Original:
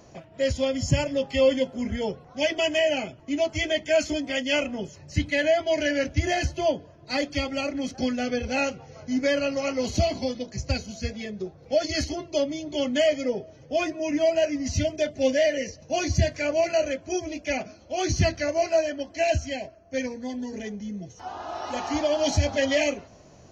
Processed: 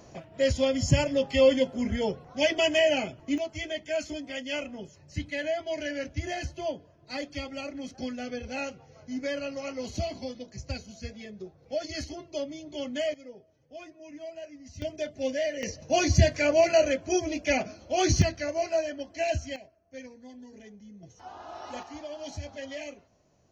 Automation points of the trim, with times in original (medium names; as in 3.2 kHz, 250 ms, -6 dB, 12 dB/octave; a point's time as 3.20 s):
0 dB
from 3.38 s -8.5 dB
from 13.14 s -19 dB
from 14.82 s -7.5 dB
from 15.63 s +2 dB
from 18.22 s -5 dB
from 19.56 s -14.5 dB
from 21.03 s -8 dB
from 21.83 s -15.5 dB